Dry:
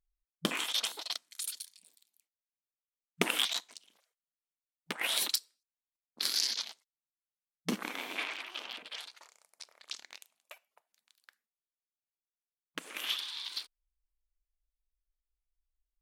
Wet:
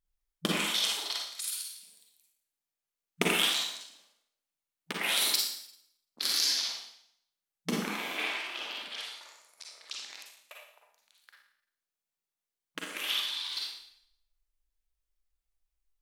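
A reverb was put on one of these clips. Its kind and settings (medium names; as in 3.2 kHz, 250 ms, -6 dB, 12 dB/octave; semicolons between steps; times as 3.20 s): Schroeder reverb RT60 0.69 s, DRR -2 dB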